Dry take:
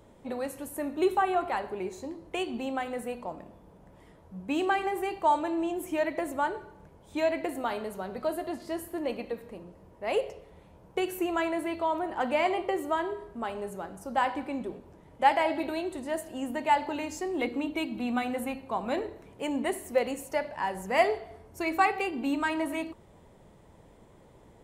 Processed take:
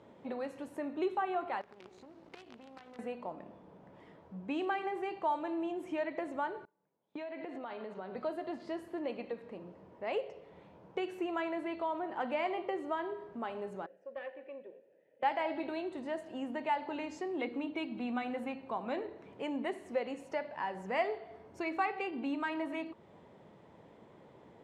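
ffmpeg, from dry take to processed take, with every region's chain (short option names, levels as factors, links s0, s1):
-filter_complex "[0:a]asettb=1/sr,asplit=3[s0][s1][s2];[s0]atrim=end=1.614[s3];[s1]atrim=start=1.61:end=2.99,asetpts=PTS-STARTPTS,afade=t=in:d=0.004:c=qsin,afade=t=out:st=1.376:d=0.004:c=qsin,acompressor=threshold=0.00501:ratio=16:attack=3.2:release=140:knee=1:detection=peak,aeval=exprs='val(0)+0.00112*(sin(2*PI*60*n/s)+sin(2*PI*2*60*n/s)/2+sin(2*PI*3*60*n/s)/3+sin(2*PI*4*60*n/s)/4+sin(2*PI*5*60*n/s)/5)':c=same,acrusher=bits=8:dc=4:mix=0:aa=0.000001[s4];[s2]atrim=start=2.986[s5];[s3][s4]acrossfade=d=0.004:c1=hsin:c2=qsin[s6];[s6][s5]acrossfade=d=0.004:c1=qsin:c2=hsin,asettb=1/sr,asplit=3[s7][s8][s9];[s7]atrim=end=6.654[s10];[s8]atrim=start=6.65:end=8.15,asetpts=PTS-STARTPTS,afade=t=in:d=0.004:c=qsin,afade=t=out:st=1.496:d=0.004:c=qsin,acompressor=threshold=0.0178:ratio=10:attack=3.2:release=140:knee=1:detection=peak,highpass=150,lowpass=4900,agate=range=0.0501:threshold=0.00501:ratio=16:release=100:detection=peak[s11];[s9]atrim=start=8.146[s12];[s10][s11]acrossfade=d=0.004:c1=hsin:c2=qsin[s13];[s13][s12]acrossfade=d=0.004:c1=qsin:c2=hsin,asettb=1/sr,asplit=3[s14][s15][s16];[s14]atrim=end=13.864[s17];[s15]atrim=start=13.86:end=15.23,asetpts=PTS-STARTPTS,afade=t=in:d=0.004:c=qsin,afade=t=out:st=1.366:d=0.004:c=qsin,asplit=3[s18][s19][s20];[s18]bandpass=f=530:t=q:w=8,volume=1[s21];[s19]bandpass=f=1840:t=q:w=8,volume=0.501[s22];[s20]bandpass=f=2480:t=q:w=8,volume=0.355[s23];[s21][s22][s23]amix=inputs=3:normalize=0,aeval=exprs='(tanh(28.2*val(0)+0.45)-tanh(0.45))/28.2':c=same[s24];[s16]atrim=start=15.226[s25];[s17][s24]acrossfade=d=0.004:c1=hsin:c2=qsin[s26];[s26][s25]acrossfade=d=0.004:c1=qsin:c2=hsin,highpass=150,acompressor=threshold=0.00631:ratio=1.5,lowpass=3800"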